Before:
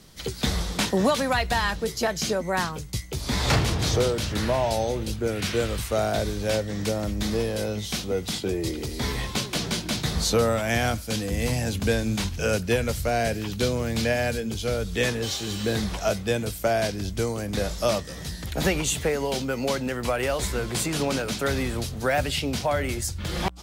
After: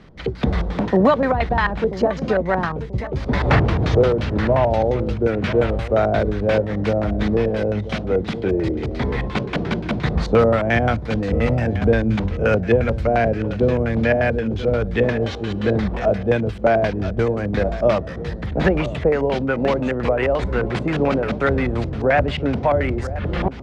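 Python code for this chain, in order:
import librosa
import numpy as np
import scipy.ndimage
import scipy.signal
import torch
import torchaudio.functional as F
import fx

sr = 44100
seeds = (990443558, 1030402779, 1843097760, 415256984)

y = fx.echo_feedback(x, sr, ms=985, feedback_pct=41, wet_db=-14.0)
y = fx.filter_lfo_lowpass(y, sr, shape='square', hz=5.7, low_hz=600.0, high_hz=2000.0, q=1.1)
y = F.gain(torch.from_numpy(y), 6.5).numpy()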